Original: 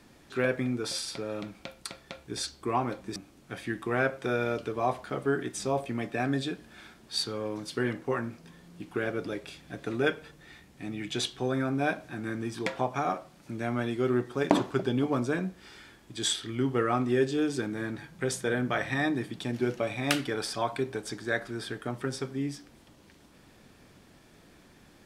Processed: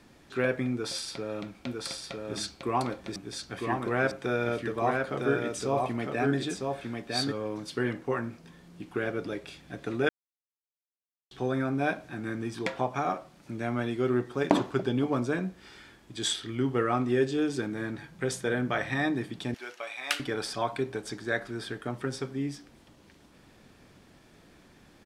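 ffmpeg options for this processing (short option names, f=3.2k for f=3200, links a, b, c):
-filter_complex "[0:a]asplit=3[a][b][c];[a]afade=t=out:st=1.65:d=0.02[d];[b]aecho=1:1:954:0.668,afade=t=in:st=1.65:d=0.02,afade=t=out:st=7.31:d=0.02[e];[c]afade=t=in:st=7.31:d=0.02[f];[d][e][f]amix=inputs=3:normalize=0,asettb=1/sr,asplit=3[g][h][i];[g]atrim=end=19.544[j];[h]atrim=start=19.54:end=20.2,asetpts=PTS-STARTPTS,afade=t=in:d=0.004:c=qsin,afade=t=out:st=0.656:d=0.004:c=qsin,highpass=1k[k];[i]atrim=start=20.196[l];[j][k]acrossfade=d=0.004:c1=hsin:c2=qsin[m];[m][l]acrossfade=d=0.004:c1=qsin:c2=hsin,asplit=3[n][o][p];[n]atrim=end=10.09,asetpts=PTS-STARTPTS,afade=t=out:st=10.086:d=0.004:c=hsin[q];[o]atrim=start=10.09:end=11.31,asetpts=PTS-STARTPTS,volume=0[r];[p]atrim=start=11.31,asetpts=PTS-STARTPTS,afade=t=in:d=0.004:c=hsin[s];[q][r][s]concat=n=3:v=0:a=1,highshelf=f=8.8k:g=-5"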